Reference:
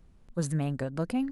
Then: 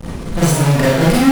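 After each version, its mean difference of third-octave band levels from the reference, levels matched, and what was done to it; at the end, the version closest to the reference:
13.5 dB: in parallel at −3.5 dB: fuzz pedal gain 58 dB, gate −54 dBFS
on the sum: four-comb reverb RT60 0.65 s, combs from 33 ms, DRR −7.5 dB
level −3.5 dB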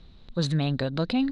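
3.5 dB: in parallel at +2 dB: brickwall limiter −28 dBFS, peak gain reduction 10.5 dB
on the sum: low-pass with resonance 3,900 Hz, resonance Q 11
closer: second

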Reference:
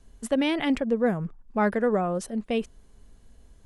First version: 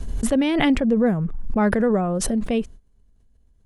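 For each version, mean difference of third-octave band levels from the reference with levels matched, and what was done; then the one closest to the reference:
3.5 dB: noise gate −43 dBFS, range −17 dB
low-shelf EQ 280 Hz +9.5 dB
background raised ahead of every attack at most 31 dB per second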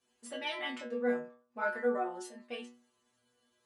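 6.0 dB: meter weighting curve A
chorus effect 1.7 Hz, delay 19.5 ms, depth 5.3 ms
stiff-string resonator 120 Hz, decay 0.46 s, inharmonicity 0.002
level +7.5 dB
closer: first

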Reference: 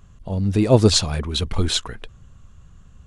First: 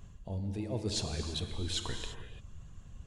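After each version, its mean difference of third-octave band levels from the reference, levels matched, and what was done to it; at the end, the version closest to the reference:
7.5 dB: reversed playback
downward compressor 6 to 1, threshold −32 dBFS, peak gain reduction 22 dB
reversed playback
parametric band 1,300 Hz −6 dB 0.54 octaves
reverb reduction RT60 0.53 s
reverb whose tail is shaped and stops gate 370 ms flat, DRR 4.5 dB
level −2 dB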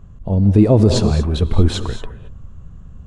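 5.5 dB: tilt shelving filter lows +8 dB, about 1,300 Hz
speech leveller within 5 dB 2 s
reverb whose tail is shaped and stops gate 250 ms rising, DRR 10 dB
boost into a limiter −1 dB
level −1 dB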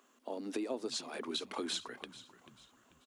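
10.5 dB: Chebyshev high-pass filter 240 Hz, order 6
downward compressor 10 to 1, threshold −29 dBFS, peak gain reduction 19.5 dB
bit reduction 12 bits
echo with shifted repeats 439 ms, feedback 39%, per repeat −63 Hz, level −16 dB
level −5.5 dB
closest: second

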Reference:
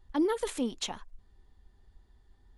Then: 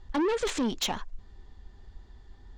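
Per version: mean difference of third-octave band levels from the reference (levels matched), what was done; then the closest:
5.5 dB: Butterworth low-pass 7,400 Hz 36 dB per octave
in parallel at −2 dB: brickwall limiter −26 dBFS, peak gain reduction 7 dB
on the sum: soft clipping −29 dBFS, distortion −8 dB
level +5.5 dB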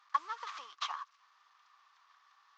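11.0 dB: variable-slope delta modulation 32 kbit/s
downward compressor 4 to 1, threshold −40 dBFS, peak gain reduction 14 dB
four-pole ladder high-pass 1,100 Hz, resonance 85%
level +15 dB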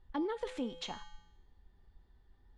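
4.0 dB: tuned comb filter 170 Hz, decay 0.85 s, harmonics odd, mix 80%
downward compressor 2 to 1, threshold −46 dBFS, peak gain reduction 5.5 dB
low-pass filter 3,900 Hz 12 dB per octave
level +10.5 dB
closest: third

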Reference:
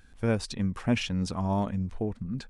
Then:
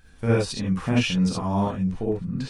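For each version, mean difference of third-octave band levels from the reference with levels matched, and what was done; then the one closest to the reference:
5.0 dB: reverb whose tail is shaped and stops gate 90 ms rising, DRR −4 dB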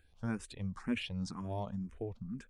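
3.0 dB: frequency shifter mixed with the dry sound +2 Hz
level −7 dB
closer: second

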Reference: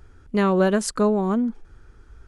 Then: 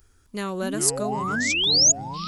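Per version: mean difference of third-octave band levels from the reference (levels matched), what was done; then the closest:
10.0 dB: sound drawn into the spectrogram rise, 0:00.62–0:01.92, 210–7,000 Hz −20 dBFS
high-shelf EQ 5,600 Hz +7.5 dB
delay with pitch and tempo change per echo 258 ms, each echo −6 semitones, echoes 2, each echo −6 dB
first-order pre-emphasis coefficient 0.8
level +3 dB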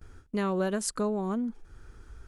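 2.5 dB: noise gate with hold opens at −40 dBFS
high-shelf EQ 6,600 Hz +8.5 dB
downward compressor 1.5 to 1, threshold −43 dBFS, peak gain reduction 10.5 dB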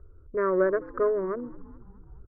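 6.5 dB: adaptive Wiener filter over 25 samples
Butterworth low-pass 1,900 Hz 36 dB per octave
phaser with its sweep stopped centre 800 Hz, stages 6
on a send: echo with shifted repeats 212 ms, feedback 64%, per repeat −58 Hz, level −21.5 dB
on the sum: level −1 dB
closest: second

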